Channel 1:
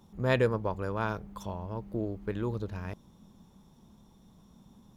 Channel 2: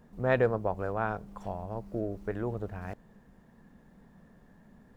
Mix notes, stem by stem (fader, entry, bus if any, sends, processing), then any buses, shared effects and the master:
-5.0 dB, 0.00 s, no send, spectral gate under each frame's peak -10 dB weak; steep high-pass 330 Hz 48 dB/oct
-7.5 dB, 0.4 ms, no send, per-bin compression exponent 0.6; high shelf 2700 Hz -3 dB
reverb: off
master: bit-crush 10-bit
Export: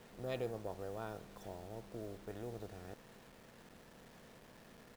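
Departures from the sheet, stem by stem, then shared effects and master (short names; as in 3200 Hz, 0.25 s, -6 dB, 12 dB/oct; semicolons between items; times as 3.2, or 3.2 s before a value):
stem 1 -5.0 dB -> -12.5 dB; stem 2 -7.5 dB -> -15.5 dB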